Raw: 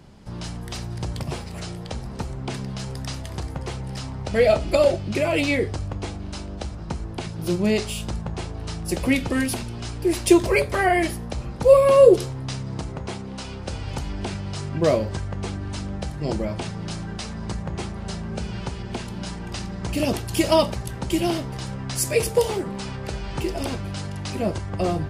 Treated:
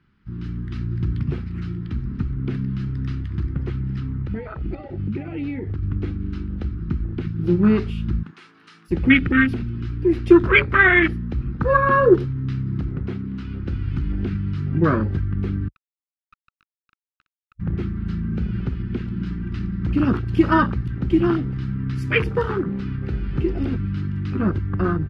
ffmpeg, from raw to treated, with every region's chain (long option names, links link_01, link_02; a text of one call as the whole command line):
ffmpeg -i in.wav -filter_complex "[0:a]asettb=1/sr,asplit=3[link_01][link_02][link_03];[link_01]atrim=end=4.004[link_04];[link_02]atrim=start=4:end=5.83,asetpts=PTS-STARTPTS,afade=type=in:duration=0.004:curve=qsin,afade=type=out:start_time=1.826:duration=0.004:curve=qsin,lowpass=11000,highshelf=frequency=3900:gain=-7.5,acompressor=threshold=-27dB:ratio=10:attack=3.2:release=140:knee=1:detection=peak[link_05];[link_03]atrim=start=5.826[link_06];[link_04][link_05]acrossfade=duration=0.004:curve1=hsin:curve2=qsin[link_07];[link_07][link_06]acrossfade=duration=0.004:curve1=qsin:curve2=hsin,asettb=1/sr,asplit=3[link_08][link_09][link_10];[link_08]atrim=end=8.234[link_11];[link_09]atrim=start=8.23:end=8.91,asetpts=PTS-STARTPTS,afade=type=in:duration=0.004:curve=qsin,afade=type=out:start_time=0.676:duration=0.004:curve=qsin,highpass=frequency=170:width=0.5412,highpass=frequency=170:width=1.3066,aemphasis=mode=production:type=bsi,acompressor=threshold=-30dB:ratio=3:attack=3.2:release=140:knee=1:detection=peak[link_12];[link_10]atrim=start=8.906[link_13];[link_11][link_12]acrossfade=duration=0.004:curve1=hsin:curve2=qsin[link_14];[link_14][link_13]acrossfade=duration=0.004:curve1=qsin:curve2=hsin,asettb=1/sr,asplit=3[link_15][link_16][link_17];[link_15]atrim=end=15.684[link_18];[link_16]atrim=start=15.68:end=17.6,asetpts=PTS-STARTPTS,afade=type=in:duration=0.004:curve=qsin,afade=type=out:start_time=1.916:duration=0.004:curve=qsin,asuperpass=centerf=1300:order=20:qfactor=5.5,acrusher=bits=4:dc=4:mix=0:aa=0.000001[link_19];[link_17]atrim=start=17.596[link_20];[link_18][link_19]acrossfade=duration=0.004:curve1=hsin:curve2=qsin[link_21];[link_21][link_20]acrossfade=duration=0.004:curve1=qsin:curve2=hsin,afwtdn=0.0447,firequalizer=gain_entry='entry(320,0);entry(610,-19);entry(1300,9);entry(7600,-21)':delay=0.05:min_phase=1,dynaudnorm=framelen=110:gausssize=9:maxgain=4.5dB,volume=2dB" out.wav